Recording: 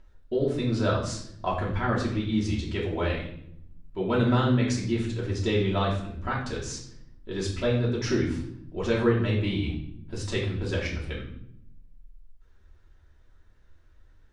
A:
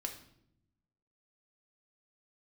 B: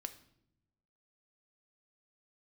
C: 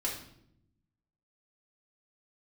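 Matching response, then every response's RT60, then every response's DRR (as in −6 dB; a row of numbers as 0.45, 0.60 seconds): C; 0.75 s, non-exponential decay, 0.75 s; 2.0, 8.0, −5.5 decibels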